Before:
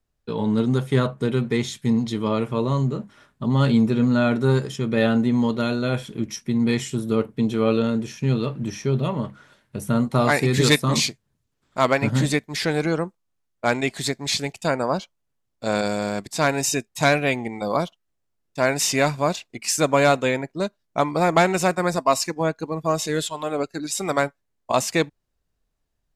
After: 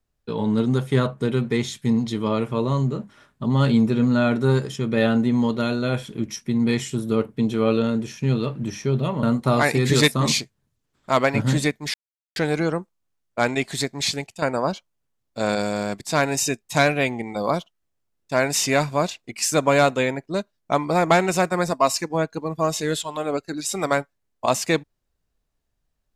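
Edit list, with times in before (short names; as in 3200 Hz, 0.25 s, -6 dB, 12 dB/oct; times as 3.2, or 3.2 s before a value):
9.23–9.91 cut
12.62 insert silence 0.42 s
14.38–14.68 fade out, to -10 dB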